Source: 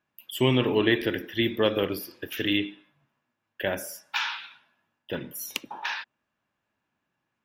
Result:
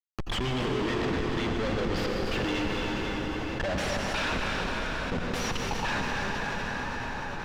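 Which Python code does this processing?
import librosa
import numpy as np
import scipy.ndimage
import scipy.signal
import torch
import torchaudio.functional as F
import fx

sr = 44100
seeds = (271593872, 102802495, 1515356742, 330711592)

p1 = fx.bin_expand(x, sr, power=1.5)
p2 = fx.high_shelf(p1, sr, hz=3800.0, db=10.0)
p3 = fx.schmitt(p2, sr, flips_db=-36.5)
p4 = fx.air_absorb(p3, sr, metres=150.0)
p5 = p4 + fx.echo_single(p4, sr, ms=288, db=-9.5, dry=0)
p6 = fx.rev_plate(p5, sr, seeds[0], rt60_s=4.7, hf_ratio=0.8, predelay_ms=75, drr_db=1.5)
y = fx.env_flatten(p6, sr, amount_pct=70)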